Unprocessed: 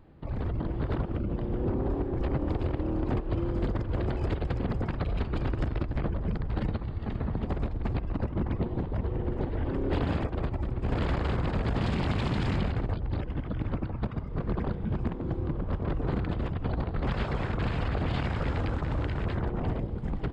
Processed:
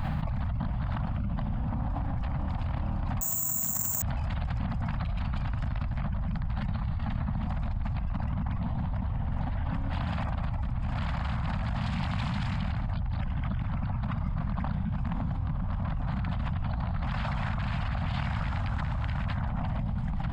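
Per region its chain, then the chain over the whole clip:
0:03.21–0:04.02: high-pass filter 150 Hz + bad sample-rate conversion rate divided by 6×, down none, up zero stuff
whole clip: Chebyshev band-stop filter 200–760 Hz, order 2; envelope flattener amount 100%; level −6.5 dB

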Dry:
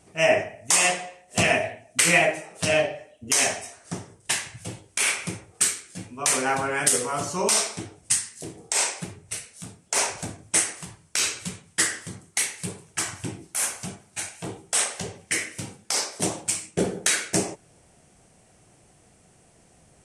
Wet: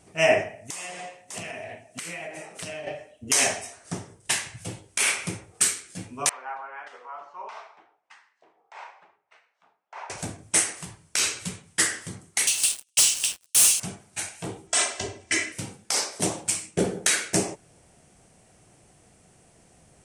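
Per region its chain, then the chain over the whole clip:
0:00.52–0:02.87: high-pass filter 83 Hz + single-tap delay 600 ms −20 dB + downward compressor 16 to 1, threshold −32 dBFS
0:06.29–0:10.10: four-pole ladder band-pass 1,100 Hz, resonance 40% + high-frequency loss of the air 100 metres
0:12.47–0:13.80: Chebyshev high-pass filter 2,700 Hz, order 5 + leveller curve on the samples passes 5
0:14.67–0:15.52: low-pass filter 8,200 Hz 24 dB per octave + comb filter 3 ms, depth 83%
whole clip: no processing

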